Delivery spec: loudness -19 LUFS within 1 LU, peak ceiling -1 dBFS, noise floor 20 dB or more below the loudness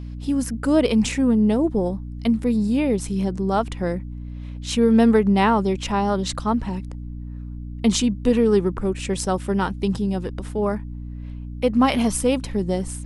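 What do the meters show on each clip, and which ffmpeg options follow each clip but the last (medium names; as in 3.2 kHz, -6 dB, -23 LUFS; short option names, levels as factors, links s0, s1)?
hum 60 Hz; highest harmonic 300 Hz; hum level -30 dBFS; loudness -21.5 LUFS; peak level -5.0 dBFS; loudness target -19.0 LUFS
-> -af "bandreject=f=60:t=h:w=4,bandreject=f=120:t=h:w=4,bandreject=f=180:t=h:w=4,bandreject=f=240:t=h:w=4,bandreject=f=300:t=h:w=4"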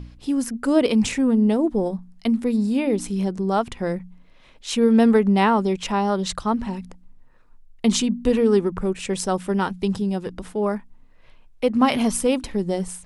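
hum not found; loudness -21.5 LUFS; peak level -5.0 dBFS; loudness target -19.0 LUFS
-> -af "volume=1.33"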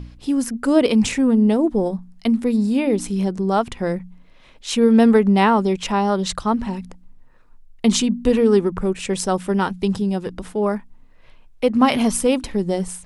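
loudness -19.0 LUFS; peak level -2.5 dBFS; noise floor -48 dBFS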